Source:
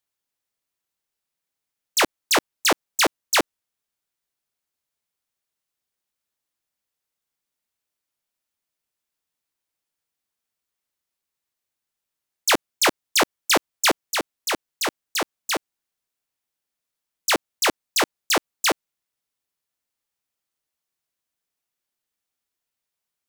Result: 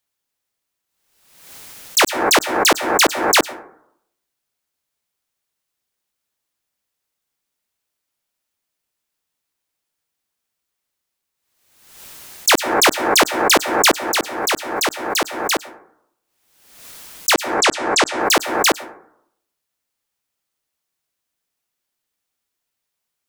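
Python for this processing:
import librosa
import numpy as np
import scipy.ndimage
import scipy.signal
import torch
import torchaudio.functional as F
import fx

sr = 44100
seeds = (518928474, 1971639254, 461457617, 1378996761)

y = fx.lowpass(x, sr, hz=8700.0, slope=24, at=(17.34, 18.16))
y = fx.rev_plate(y, sr, seeds[0], rt60_s=0.72, hf_ratio=0.3, predelay_ms=95, drr_db=17.0)
y = fx.pre_swell(y, sr, db_per_s=60.0)
y = y * librosa.db_to_amplitude(5.0)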